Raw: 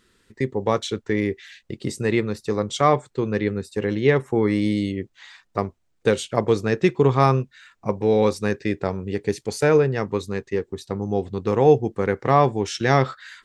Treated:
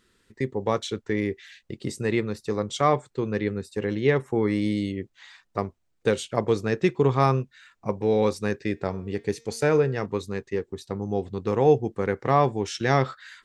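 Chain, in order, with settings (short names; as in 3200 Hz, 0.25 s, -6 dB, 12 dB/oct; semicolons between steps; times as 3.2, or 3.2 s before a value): 8.71–10.06 de-hum 229.9 Hz, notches 35; gain -3.5 dB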